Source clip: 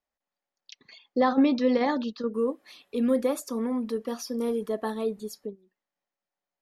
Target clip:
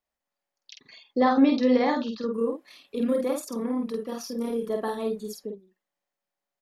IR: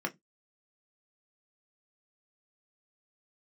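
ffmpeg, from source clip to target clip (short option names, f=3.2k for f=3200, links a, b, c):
-filter_complex "[0:a]asettb=1/sr,asplit=3[a][b][c];[a]atrim=end=2.364[d];[b]atrim=start=2.36:end=4.7,asetpts=PTS-STARTPTS,afade=t=in:d=0.004:c=qsin,afade=t=out:st=2.336:d=0.004:c=qsin,tremolo=f=34:d=0.462[e];[c]atrim=start=4.696[f];[d][e]acrossfade=d=0.004:c1=hsin:c2=qsin[g];[g][f]acrossfade=d=0.004:c1=qsin:c2=hsin,asplit=2[h][i];[i]adelay=48,volume=-3.5dB[j];[h][j]amix=inputs=2:normalize=0"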